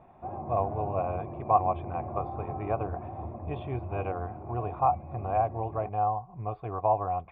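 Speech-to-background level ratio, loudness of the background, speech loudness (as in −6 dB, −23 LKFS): 9.0 dB, −40.0 LKFS, −31.0 LKFS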